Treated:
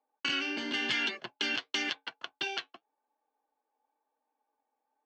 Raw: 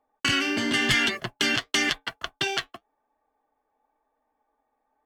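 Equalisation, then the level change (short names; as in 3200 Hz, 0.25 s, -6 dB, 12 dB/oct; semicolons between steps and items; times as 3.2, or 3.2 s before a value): speaker cabinet 370–5000 Hz, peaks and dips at 410 Hz -4 dB, 660 Hz -8 dB, 1200 Hz -8 dB, 1900 Hz -9 dB, 3400 Hz -4 dB, 4900 Hz -4 dB; -3.5 dB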